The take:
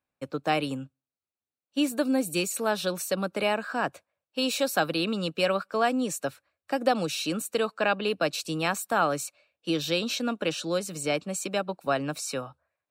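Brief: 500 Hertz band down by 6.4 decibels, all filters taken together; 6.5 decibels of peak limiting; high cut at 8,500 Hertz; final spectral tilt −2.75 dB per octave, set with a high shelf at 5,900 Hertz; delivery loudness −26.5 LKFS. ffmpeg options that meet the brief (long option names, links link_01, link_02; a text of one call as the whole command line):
ffmpeg -i in.wav -af "lowpass=8500,equalizer=frequency=500:width_type=o:gain=-8,highshelf=frequency=5900:gain=7.5,volume=4.5dB,alimiter=limit=-14dB:level=0:latency=1" out.wav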